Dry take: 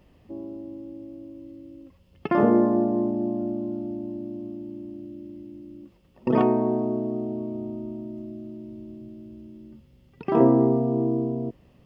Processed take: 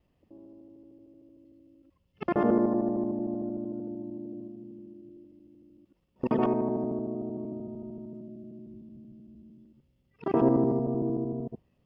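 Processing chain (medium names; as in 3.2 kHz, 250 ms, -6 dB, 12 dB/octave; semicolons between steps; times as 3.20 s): time reversed locally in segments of 76 ms; spectral noise reduction 9 dB; trim -5 dB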